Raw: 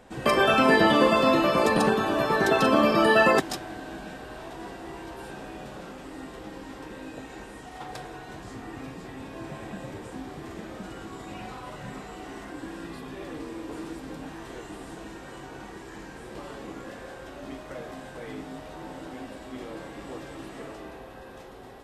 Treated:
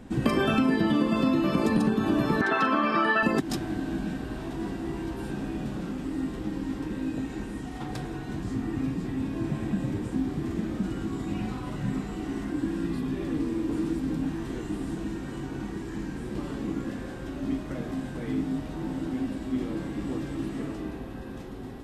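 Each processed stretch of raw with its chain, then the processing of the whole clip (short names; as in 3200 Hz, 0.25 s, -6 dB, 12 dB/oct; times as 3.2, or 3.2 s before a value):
2.41–3.23 band-pass 1500 Hz, Q 0.64 + bell 1400 Hz +6.5 dB 1.4 oct
whole clip: resonant low shelf 380 Hz +10 dB, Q 1.5; compressor 10:1, threshold -20 dBFS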